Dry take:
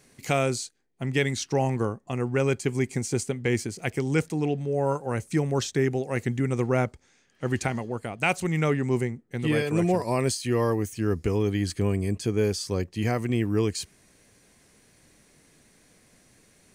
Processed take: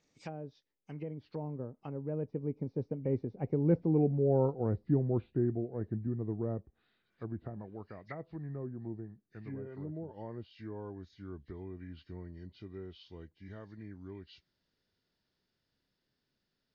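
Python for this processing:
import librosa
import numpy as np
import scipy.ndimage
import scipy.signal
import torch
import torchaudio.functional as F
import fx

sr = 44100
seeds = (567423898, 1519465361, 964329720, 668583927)

y = fx.freq_compress(x, sr, knee_hz=1800.0, ratio=1.5)
y = fx.doppler_pass(y, sr, speed_mps=41, closest_m=28.0, pass_at_s=4.14)
y = fx.env_lowpass_down(y, sr, base_hz=550.0, full_db=-36.5)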